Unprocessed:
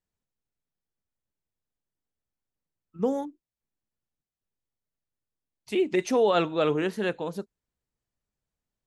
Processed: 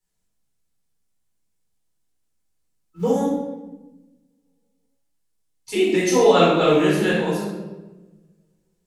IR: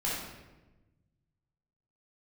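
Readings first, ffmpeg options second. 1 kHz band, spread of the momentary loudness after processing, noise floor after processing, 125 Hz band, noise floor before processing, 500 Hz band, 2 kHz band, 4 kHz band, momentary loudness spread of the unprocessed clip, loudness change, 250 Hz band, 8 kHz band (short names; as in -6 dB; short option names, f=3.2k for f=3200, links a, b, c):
+8.5 dB, 18 LU, -71 dBFS, +11.0 dB, under -85 dBFS, +7.5 dB, +9.0 dB, +10.0 dB, 14 LU, +7.5 dB, +8.5 dB, +13.0 dB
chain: -filter_complex "[0:a]equalizer=f=8.9k:t=o:w=1.9:g=11,acrossover=split=200|1000|1700[a][b][c][d];[a]acrusher=bits=5:mode=log:mix=0:aa=0.000001[e];[e][b][c][d]amix=inputs=4:normalize=0[f];[1:a]atrim=start_sample=2205[g];[f][g]afir=irnorm=-1:irlink=0"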